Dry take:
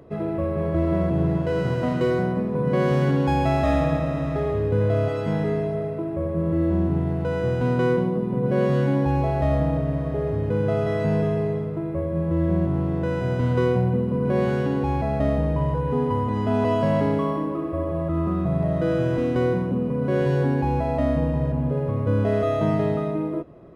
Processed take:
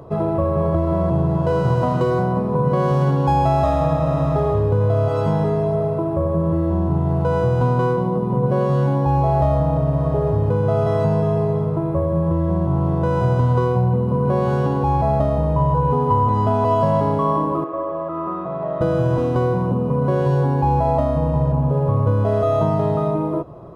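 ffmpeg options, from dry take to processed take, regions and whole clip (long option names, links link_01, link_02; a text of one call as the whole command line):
ffmpeg -i in.wav -filter_complex "[0:a]asettb=1/sr,asplit=3[link_01][link_02][link_03];[link_01]atrim=end=17.644[link_04];[link_02]atrim=start=17.64:end=18.81,asetpts=PTS-STARTPTS,afade=type=in:duration=0.004:curve=qsin,afade=type=out:start_time=1.166:duration=0.004:curve=qsin,highpass=450,lowpass=2300,equalizer=frequency=750:width_type=o:width=1:gain=-6.5[link_05];[link_03]atrim=start=18.806[link_06];[link_04][link_05]acrossfade=duration=0.004:curve1=hsin:curve2=qsin[link_07];[link_07][link_06]acrossfade=duration=0.004:curve1=qsin:curve2=hsin,acompressor=threshold=-23dB:ratio=6,equalizer=frequency=125:width_type=o:width=1:gain=5,equalizer=frequency=250:width_type=o:width=1:gain=-5,equalizer=frequency=1000:width_type=o:width=1:gain=10,equalizer=frequency=2000:width_type=o:width=1:gain=-11,volume=7dB" out.wav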